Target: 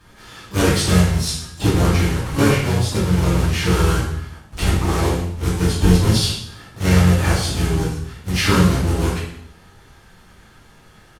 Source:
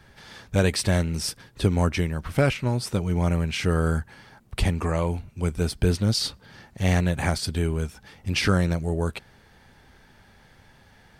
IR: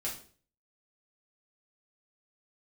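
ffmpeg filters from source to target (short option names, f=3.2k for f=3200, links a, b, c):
-filter_complex "[0:a]acrusher=bits=2:mode=log:mix=0:aa=0.000001,asplit=3[a][b][c];[b]asetrate=33038,aresample=44100,atempo=1.33484,volume=-3dB[d];[c]asetrate=88200,aresample=44100,atempo=0.5,volume=-11dB[e];[a][d][e]amix=inputs=3:normalize=0[f];[1:a]atrim=start_sample=2205,asetrate=26460,aresample=44100[g];[f][g]afir=irnorm=-1:irlink=0,volume=-2.5dB"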